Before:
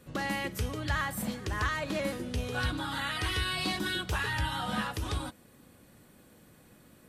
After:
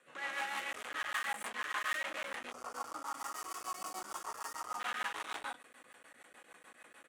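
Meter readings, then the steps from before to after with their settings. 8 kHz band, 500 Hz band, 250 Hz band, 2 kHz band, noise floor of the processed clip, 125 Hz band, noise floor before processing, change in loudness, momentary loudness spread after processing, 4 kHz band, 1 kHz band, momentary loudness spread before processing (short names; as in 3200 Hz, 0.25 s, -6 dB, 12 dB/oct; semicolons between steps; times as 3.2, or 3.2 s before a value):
-3.0 dB, -11.5 dB, -21.0 dB, -5.0 dB, -63 dBFS, under -35 dB, -59 dBFS, -7.5 dB, 22 LU, -10.0 dB, -4.0 dB, 5 LU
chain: LPF 10000 Hz 24 dB/oct; high shelf 3500 Hz -9.5 dB; non-linear reverb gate 0.27 s rising, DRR -7 dB; soft clip -34 dBFS, distortion -6 dB; HPF 1100 Hz 12 dB/oct; bell 4800 Hz -11 dB 0.78 oct; rotary speaker horn 6.7 Hz; doubler 28 ms -10.5 dB; spectral gain 2.51–4.8, 1400–4400 Hz -17 dB; crackling interface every 0.10 s, samples 512, zero, from 0.73; gain +6.5 dB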